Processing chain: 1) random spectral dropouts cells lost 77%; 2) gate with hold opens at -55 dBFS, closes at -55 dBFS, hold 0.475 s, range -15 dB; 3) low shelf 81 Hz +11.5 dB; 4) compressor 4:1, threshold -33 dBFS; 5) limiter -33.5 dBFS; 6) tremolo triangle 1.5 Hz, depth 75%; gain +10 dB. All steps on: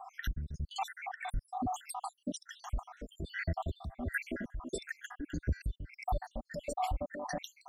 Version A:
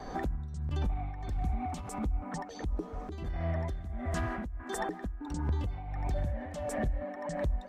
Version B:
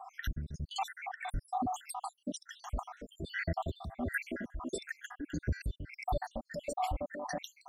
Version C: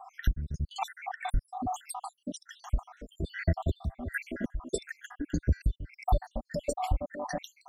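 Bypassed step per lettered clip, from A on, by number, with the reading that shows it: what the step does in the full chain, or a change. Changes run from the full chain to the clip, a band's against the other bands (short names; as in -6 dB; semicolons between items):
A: 1, 125 Hz band +7.5 dB; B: 3, 125 Hz band -1.5 dB; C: 5, mean gain reduction 2.0 dB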